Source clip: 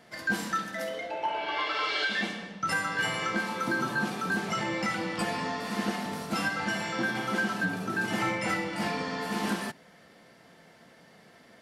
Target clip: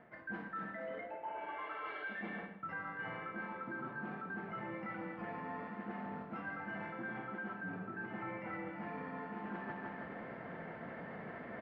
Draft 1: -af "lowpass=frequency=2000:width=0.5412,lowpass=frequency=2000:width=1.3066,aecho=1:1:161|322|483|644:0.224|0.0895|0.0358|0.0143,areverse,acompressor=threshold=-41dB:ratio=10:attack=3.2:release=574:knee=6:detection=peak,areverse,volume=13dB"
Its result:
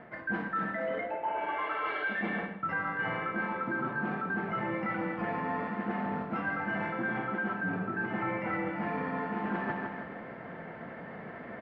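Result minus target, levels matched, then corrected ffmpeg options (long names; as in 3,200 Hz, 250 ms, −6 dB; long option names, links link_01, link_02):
downward compressor: peak gain reduction −10.5 dB
-af "lowpass=frequency=2000:width=0.5412,lowpass=frequency=2000:width=1.3066,aecho=1:1:161|322|483|644:0.224|0.0895|0.0358|0.0143,areverse,acompressor=threshold=-52.5dB:ratio=10:attack=3.2:release=574:knee=6:detection=peak,areverse,volume=13dB"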